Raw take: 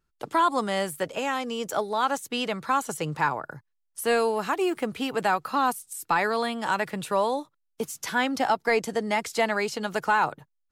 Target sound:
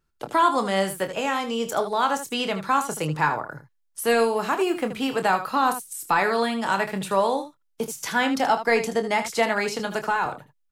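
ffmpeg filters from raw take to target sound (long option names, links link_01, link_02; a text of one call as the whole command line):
ffmpeg -i in.wav -filter_complex "[0:a]asettb=1/sr,asplit=3[link_01][link_02][link_03];[link_01]atrim=end=9.794[link_04];[link_02]atrim=start=9.79:end=10.26,asetpts=PTS-STARTPTS,afade=type=in:duration=0.004:curve=qsin,afade=type=out:start_time=0.466:duration=0.004:curve=qsin,acrossover=split=160[link_05][link_06];[link_06]acompressor=threshold=-26dB:ratio=2[link_07];[link_05][link_07]amix=inputs=2:normalize=0[link_08];[link_03]atrim=start=10.256[link_09];[link_04][link_08]acrossfade=duration=0.004:curve1=hsin:curve2=qsin[link_10];[link_10][link_09]acrossfade=duration=0.004:curve1=qsin:curve2=hsin,aecho=1:1:26|78:0.355|0.282,volume=2dB" out.wav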